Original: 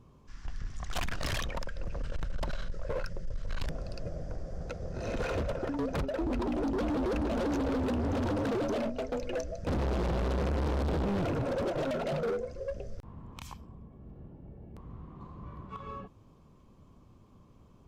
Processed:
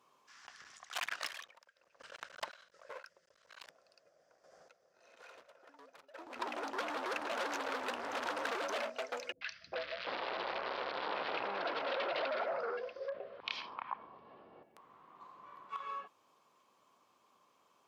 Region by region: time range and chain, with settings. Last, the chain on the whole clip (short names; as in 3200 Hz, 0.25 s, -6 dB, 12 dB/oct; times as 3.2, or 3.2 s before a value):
0.78–6.36 random-step tremolo 4.1 Hz, depth 80% + upward expander, over -44 dBFS
9.32–14.63 steep low-pass 4800 Hz 48 dB/oct + three bands offset in time lows, highs, mids 90/400 ms, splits 160/1600 Hz + fast leveller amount 50%
whole clip: HPF 870 Hz 12 dB/oct; dynamic EQ 1900 Hz, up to +4 dB, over -53 dBFS, Q 0.76; gain +1 dB